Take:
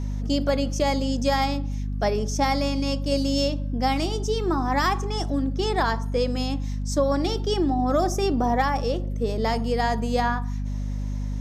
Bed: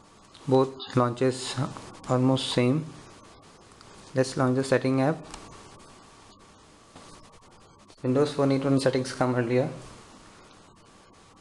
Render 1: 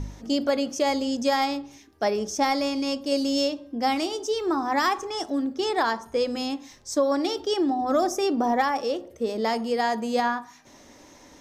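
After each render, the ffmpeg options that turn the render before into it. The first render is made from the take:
-af "bandreject=f=50:t=h:w=4,bandreject=f=100:t=h:w=4,bandreject=f=150:t=h:w=4,bandreject=f=200:t=h:w=4,bandreject=f=250:t=h:w=4"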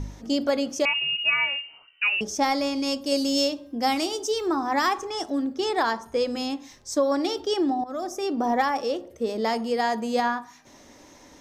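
-filter_complex "[0:a]asettb=1/sr,asplit=3[a][b][c];[a]atrim=end=0.854[d];[b]atrim=start=0.85:end=2.21,asetpts=PTS-STARTPTS,afade=t=in:d=0.004:c=qsin,afade=t=out:st=1.356:d=0.004:c=qsin,lowpass=f=2.6k:t=q:w=0.5098,lowpass=f=2.6k:t=q:w=0.6013,lowpass=f=2.6k:t=q:w=0.9,lowpass=f=2.6k:t=q:w=2.563,afreqshift=-3100[e];[c]atrim=start=2.206[f];[d][e]acrossfade=d=0.004:c1=hsin:c2=qsin[g];[g][f]acrossfade=d=0.004:c1=qsin:c2=hsin,asettb=1/sr,asplit=3[h][i][j];[h]atrim=end=2.834[k];[i]atrim=start=2.83:end=4.48,asetpts=PTS-STARTPTS,afade=t=in:d=0.004:c=qsin,afade=t=out:st=1.646:d=0.004:c=qsin,highshelf=f=5.6k:g=7.5[l];[j]atrim=start=4.476[m];[k][l]acrossfade=d=0.004:c1=hsin:c2=qsin[n];[n][m]acrossfade=d=0.004:c1=qsin:c2=hsin,asplit=2[o][p];[o]atrim=end=7.84,asetpts=PTS-STARTPTS,afade=t=out:st=7.836:d=0.004:c=hsin:silence=0.188365[q];[p]atrim=start=7.84,asetpts=PTS-STARTPTS,afade=t=in:d=0.71:silence=0.188365[r];[q][r]concat=n=2:v=0:a=1"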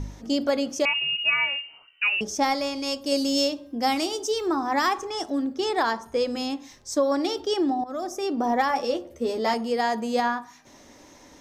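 -filter_complex "[0:a]asettb=1/sr,asplit=3[a][b][c];[a]atrim=end=2.544[d];[b]atrim=start=2.54:end=3.04,asetpts=PTS-STARTPTS,afade=t=in:d=0.004:c=qsin,afade=t=out:st=0.496:d=0.004:c=qsin,equalizer=f=220:w=1.5:g=-7.5[e];[c]atrim=start=3.036[f];[d][e]acrossfade=d=0.004:c1=hsin:c2=qsin[g];[g][f]acrossfade=d=0.004:c1=qsin:c2=hsin,asettb=1/sr,asplit=3[h][i][j];[h]atrim=end=8.684[k];[i]atrim=start=8.68:end=9.54,asetpts=PTS-STARTPTS,afade=t=in:d=0.004:c=qsin,afade=t=out:st=0.856:d=0.004:c=qsin,asplit=2[l][m];[m]adelay=12,volume=-3.5dB[n];[l][n]amix=inputs=2:normalize=0,atrim=end_sample=37926[o];[j]atrim=start=9.536[p];[k][o]acrossfade=d=0.004:c1=hsin:c2=qsin[q];[q][p]acrossfade=d=0.004:c1=qsin:c2=hsin"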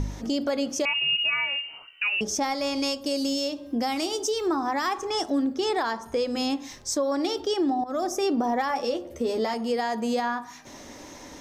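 -filter_complex "[0:a]asplit=2[a][b];[b]acompressor=threshold=-34dB:ratio=6,volume=1.5dB[c];[a][c]amix=inputs=2:normalize=0,alimiter=limit=-17.5dB:level=0:latency=1:release=265"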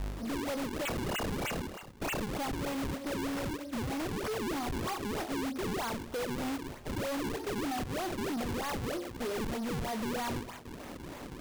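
-af "acrusher=samples=40:mix=1:aa=0.000001:lfo=1:lforange=64:lforate=3.2,asoftclip=type=tanh:threshold=-32.5dB"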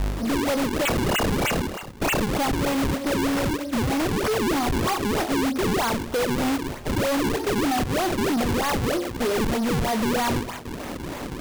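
-af "volume=11.5dB"

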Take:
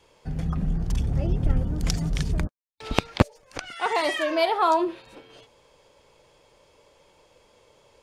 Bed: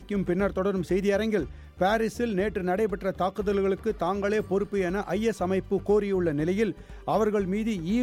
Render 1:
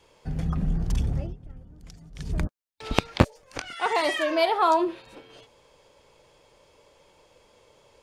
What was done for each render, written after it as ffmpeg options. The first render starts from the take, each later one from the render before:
-filter_complex "[0:a]asettb=1/sr,asplit=3[a][b][c];[a]atrim=end=3.184[d];[b]atrim=start=3.18:end=3.79,asetpts=PTS-STARTPTS,afade=t=in:d=0.004:c=qsin,afade=t=out:st=0.606:d=0.004:c=qsin,asplit=2[e][f];[f]adelay=23,volume=-10dB[g];[e][g]amix=inputs=2:normalize=0,atrim=end_sample=26901[h];[c]atrim=start=3.786[i];[d][h]acrossfade=d=0.004:c1=hsin:c2=qsin[j];[j][i]acrossfade=d=0.004:c1=qsin:c2=hsin,asplit=3[k][l][m];[k]atrim=end=1.36,asetpts=PTS-STARTPTS,afade=t=out:st=1.07:d=0.29:silence=0.0841395[n];[l]atrim=start=1.36:end=2.14,asetpts=PTS-STARTPTS,volume=-21.5dB[o];[m]atrim=start=2.14,asetpts=PTS-STARTPTS,afade=t=in:d=0.29:silence=0.0841395[p];[n][o][p]concat=n=3:v=0:a=1"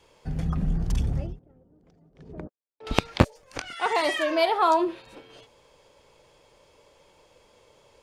-filter_complex "[0:a]asettb=1/sr,asplit=3[a][b][c];[a]atrim=end=1.394[d];[b]atrim=start=1.39:end=2.87,asetpts=PTS-STARTPTS,afade=t=in:d=0.004:c=qsin,afade=t=out:st=1.476:d=0.004:c=qsin,bandpass=f=450:t=q:w=1.3[e];[c]atrim=start=2.866[f];[d][e]acrossfade=d=0.004:c1=hsin:c2=qsin[g];[g][f]acrossfade=d=0.004:c1=qsin:c2=hsin"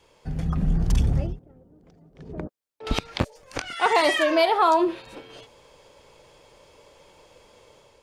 -af "alimiter=limit=-15dB:level=0:latency=1:release=221,dynaudnorm=f=430:g=3:m=5dB"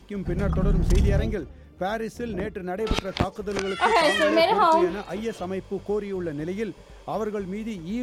-filter_complex "[1:a]volume=-4dB[a];[0:a][a]amix=inputs=2:normalize=0"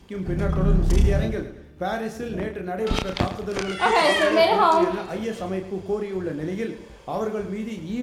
-filter_complex "[0:a]asplit=2[a][b];[b]adelay=32,volume=-5.5dB[c];[a][c]amix=inputs=2:normalize=0,aecho=1:1:108|216|324|432:0.251|0.1|0.0402|0.0161"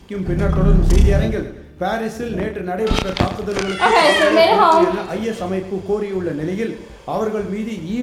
-af "volume=6dB,alimiter=limit=-2dB:level=0:latency=1"

